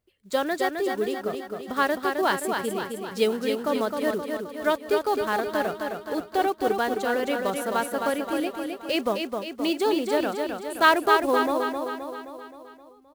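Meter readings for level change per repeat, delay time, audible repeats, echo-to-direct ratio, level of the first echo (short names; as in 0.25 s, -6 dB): -5.0 dB, 0.262 s, 6, -3.5 dB, -5.0 dB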